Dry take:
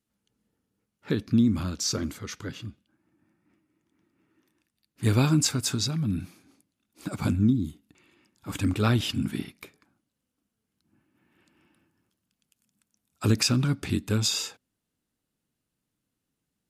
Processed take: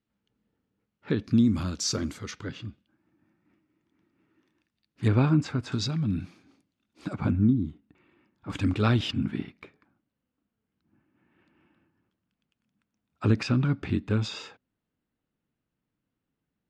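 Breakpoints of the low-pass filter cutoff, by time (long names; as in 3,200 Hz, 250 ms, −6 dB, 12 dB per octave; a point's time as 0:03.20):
3,400 Hz
from 0:01.24 8,500 Hz
from 0:02.31 4,400 Hz
from 0:05.08 2,000 Hz
from 0:05.72 4,600 Hz
from 0:07.13 2,000 Hz
from 0:08.50 4,400 Hz
from 0:09.11 2,500 Hz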